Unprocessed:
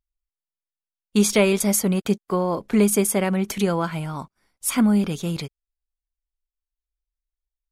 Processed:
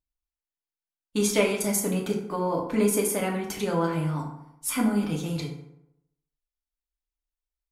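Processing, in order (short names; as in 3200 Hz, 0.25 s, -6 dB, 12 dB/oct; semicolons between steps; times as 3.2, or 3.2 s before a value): 1.48–1.92 transient shaper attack +2 dB, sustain -8 dB; FDN reverb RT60 0.81 s, low-frequency decay 1×, high-frequency decay 0.55×, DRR -1.5 dB; gain -7 dB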